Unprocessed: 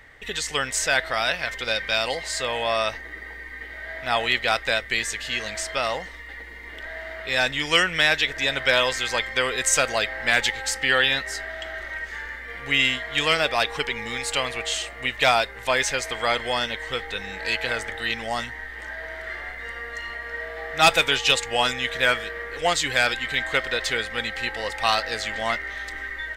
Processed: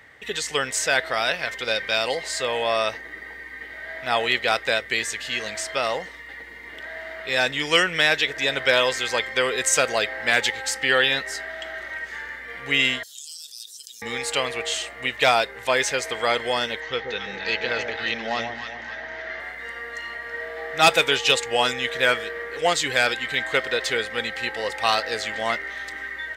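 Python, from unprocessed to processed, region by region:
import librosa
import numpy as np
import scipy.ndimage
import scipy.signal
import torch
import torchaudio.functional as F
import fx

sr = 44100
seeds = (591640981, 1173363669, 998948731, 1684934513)

y = fx.chain(x, sr, fx.cheby2_highpass(hz=2300.0, order=4, stop_db=50),
    fx.env_flatten(amount_pct=70), at=(13.03, 14.02))
y = fx.chain(y, sr, fx.ellip_lowpass(hz=6300.0, order=4, stop_db=50),
    fx.echo_alternate(ms=136, hz=900.0, feedback_pct=68, wet_db=-4.5), at=(16.8, 19.4))
y = scipy.signal.sosfilt(scipy.signal.butter(2, 100.0, 'highpass', fs=sr, output='sos'), y)
y = fx.dynamic_eq(y, sr, hz=430.0, q=2.2, threshold_db=-41.0, ratio=4.0, max_db=5)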